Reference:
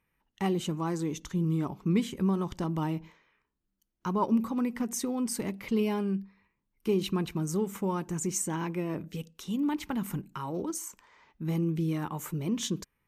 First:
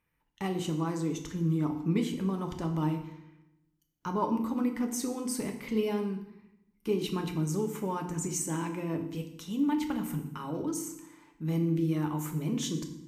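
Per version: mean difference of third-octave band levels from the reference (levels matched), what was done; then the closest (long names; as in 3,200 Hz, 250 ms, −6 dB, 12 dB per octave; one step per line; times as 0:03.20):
4.0 dB: feedback delay network reverb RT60 0.84 s, low-frequency decay 1.45×, high-frequency decay 0.85×, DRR 4 dB
level −2.5 dB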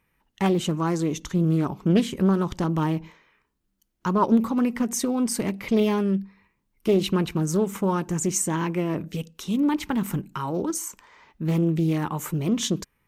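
1.5 dB: highs frequency-modulated by the lows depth 0.31 ms
level +7 dB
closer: second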